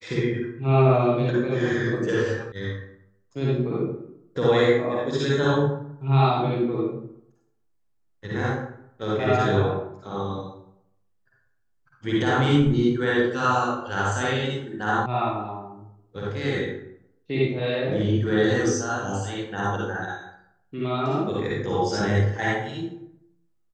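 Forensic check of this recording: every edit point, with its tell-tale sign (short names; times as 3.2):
2.52 sound cut off
15.06 sound cut off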